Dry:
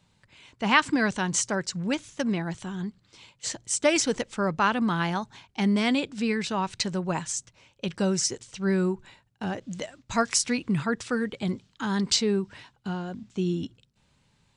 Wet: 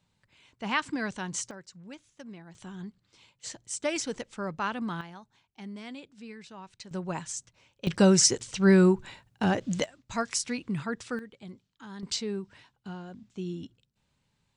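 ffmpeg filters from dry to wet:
ffmpeg -i in.wav -af "asetnsamples=nb_out_samples=441:pad=0,asendcmd='1.51 volume volume -18dB;2.55 volume volume -8dB;5.01 volume volume -18dB;6.91 volume volume -5.5dB;7.87 volume volume 5.5dB;9.84 volume volume -6dB;11.19 volume volume -16dB;12.03 volume volume -8.5dB',volume=-8dB" out.wav

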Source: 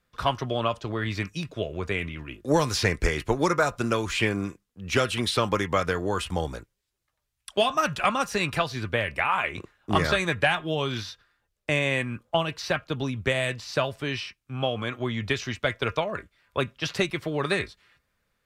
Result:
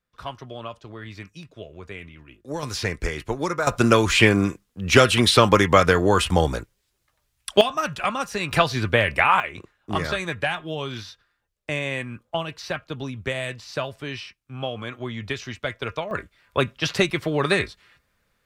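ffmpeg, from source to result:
ffmpeg -i in.wav -af "asetnsamples=nb_out_samples=441:pad=0,asendcmd='2.63 volume volume -2.5dB;3.67 volume volume 9dB;7.61 volume volume -1dB;8.51 volume volume 7dB;9.4 volume volume -2.5dB;16.11 volume volume 5dB',volume=-9dB" out.wav

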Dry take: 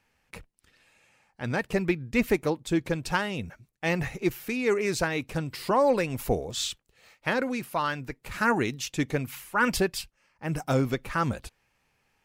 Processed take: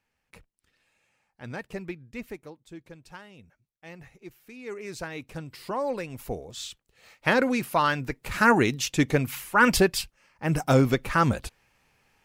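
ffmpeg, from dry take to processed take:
ffmpeg -i in.wav -af "volume=15dB,afade=type=out:start_time=1.55:duration=0.97:silence=0.316228,afade=type=in:start_time=4.42:duration=0.83:silence=0.281838,afade=type=in:start_time=6.7:duration=0.61:silence=0.251189" out.wav

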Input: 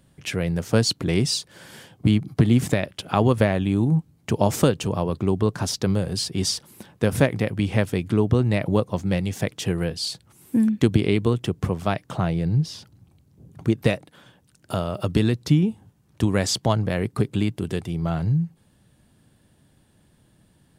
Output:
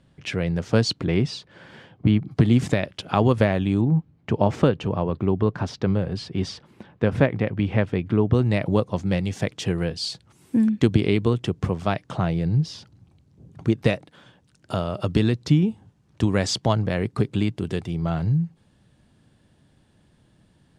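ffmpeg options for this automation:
ffmpeg -i in.wav -af "asetnsamples=nb_out_samples=441:pad=0,asendcmd='1.06 lowpass f 2800;2.31 lowpass f 6300;3.81 lowpass f 2700;8.33 lowpass f 6800',lowpass=5000" out.wav

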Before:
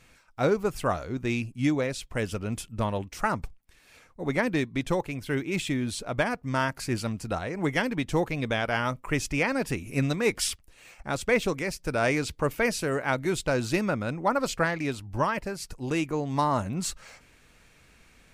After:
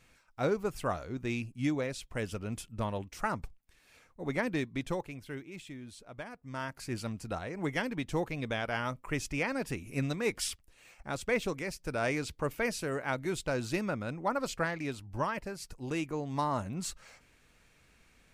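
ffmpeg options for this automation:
ffmpeg -i in.wav -af "volume=4.5dB,afade=type=out:start_time=4.75:duration=0.78:silence=0.281838,afade=type=in:start_time=6.33:duration=0.75:silence=0.298538" out.wav

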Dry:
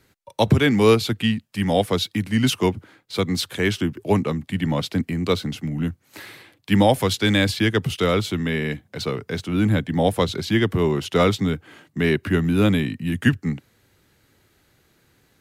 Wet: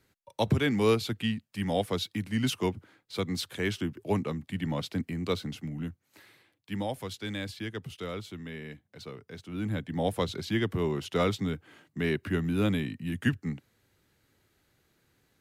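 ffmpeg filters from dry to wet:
ffmpeg -i in.wav -af "volume=-1dB,afade=type=out:start_time=5.6:duration=0.62:silence=0.398107,afade=type=in:start_time=9.37:duration=0.77:silence=0.398107" out.wav

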